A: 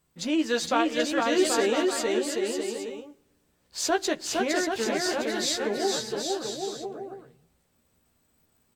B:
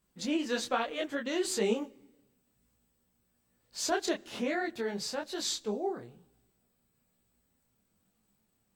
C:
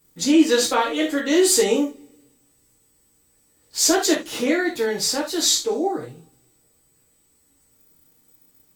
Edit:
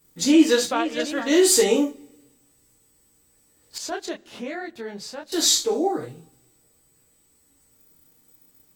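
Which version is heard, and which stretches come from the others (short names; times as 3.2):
C
0.64–1.21 from A, crossfade 0.24 s
3.78–5.32 from B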